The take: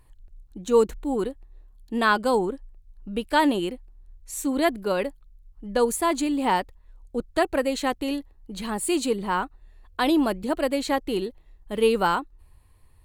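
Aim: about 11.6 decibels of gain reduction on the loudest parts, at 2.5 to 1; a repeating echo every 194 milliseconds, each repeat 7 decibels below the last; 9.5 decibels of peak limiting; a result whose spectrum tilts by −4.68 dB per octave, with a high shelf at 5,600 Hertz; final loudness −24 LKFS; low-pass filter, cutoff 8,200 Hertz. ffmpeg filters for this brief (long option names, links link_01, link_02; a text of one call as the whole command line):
ffmpeg -i in.wav -af "lowpass=8200,highshelf=frequency=5600:gain=-7,acompressor=threshold=-32dB:ratio=2.5,alimiter=level_in=3dB:limit=-24dB:level=0:latency=1,volume=-3dB,aecho=1:1:194|388|582|776|970:0.447|0.201|0.0905|0.0407|0.0183,volume=13dB" out.wav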